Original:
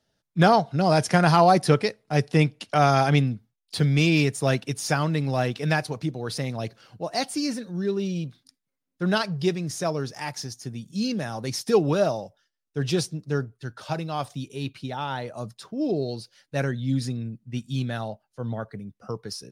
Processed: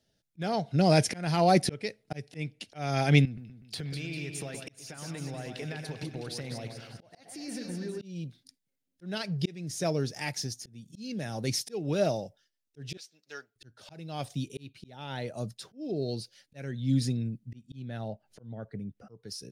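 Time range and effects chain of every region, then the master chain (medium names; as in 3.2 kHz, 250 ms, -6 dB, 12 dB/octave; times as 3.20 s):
3.25–8.02 s: peaking EQ 1.3 kHz +8 dB 2.2 oct + compression 12:1, threshold -33 dBFS + two-band feedback delay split 2.3 kHz, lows 123 ms, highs 199 ms, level -6 dB
12.97–13.56 s: high-pass 1.2 kHz + peaking EQ 10 kHz -11.5 dB 0.72 oct
17.54–19.18 s: treble shelf 3.4 kHz -11 dB + upward compressor, threshold -44 dBFS
whole clip: dynamic bell 2.2 kHz, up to +5 dB, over -43 dBFS, Q 2.8; slow attack 438 ms; peaking EQ 1.1 kHz -11 dB 0.95 oct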